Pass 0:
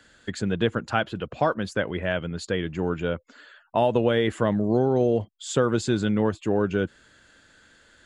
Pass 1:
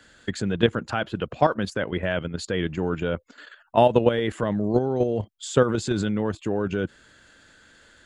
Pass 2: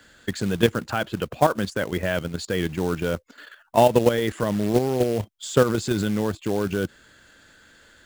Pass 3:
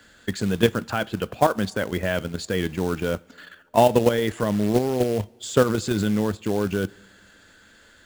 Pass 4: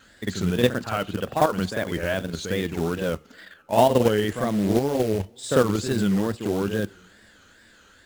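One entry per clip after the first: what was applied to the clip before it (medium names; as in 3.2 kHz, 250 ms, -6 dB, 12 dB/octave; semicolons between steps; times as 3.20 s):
level held to a coarse grid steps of 10 dB; trim +5.5 dB
short-mantissa float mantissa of 2-bit; trim +1 dB
two-slope reverb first 0.28 s, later 2.4 s, from -19 dB, DRR 17 dB
reverse echo 52 ms -6.5 dB; wow and flutter 150 cents; trim -1.5 dB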